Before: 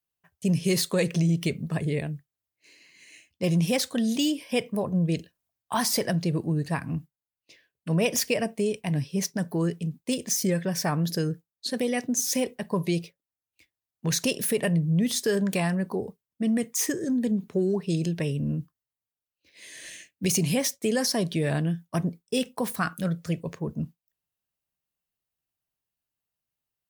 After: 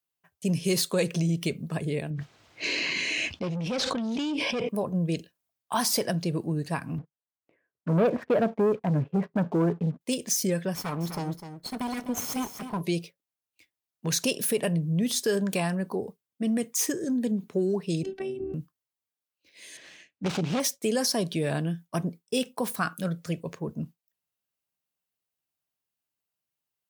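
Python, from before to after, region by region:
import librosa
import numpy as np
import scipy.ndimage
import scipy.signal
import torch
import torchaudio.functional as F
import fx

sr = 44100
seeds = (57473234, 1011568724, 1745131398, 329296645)

y = fx.chain(x, sr, fx.tube_stage(drive_db=26.0, bias=0.35),
    fx.air_absorb(metres=150.0),
    fx.env_flatten(amount_pct=100), at=(2.1, 4.69))
y = fx.chain(y, sr, fx.cheby2_lowpass(hz=6600.0, order=4, stop_db=70),
    fx.leveller(passes=2), at=(6.98, 10.01))
y = fx.chain(y, sr, fx.lower_of_two(delay_ms=0.94),
    fx.peak_eq(hz=6400.0, db=-6.0, octaves=2.9),
    fx.echo_single(ms=253, db=-10.0), at=(10.75, 12.81))
y = fx.chain(y, sr, fx.lowpass(hz=1800.0, slope=6),
    fx.peak_eq(hz=260.0, db=13.5, octaves=0.2),
    fx.robotise(hz=384.0), at=(18.03, 18.54))
y = fx.chain(y, sr, fx.self_delay(depth_ms=0.61),
    fx.air_absorb(metres=130.0), at=(19.77, 20.6))
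y = fx.highpass(y, sr, hz=170.0, slope=6)
y = fx.notch(y, sr, hz=1800.0, q=29.0)
y = fx.dynamic_eq(y, sr, hz=2000.0, q=5.6, threshold_db=-53.0, ratio=4.0, max_db=-5)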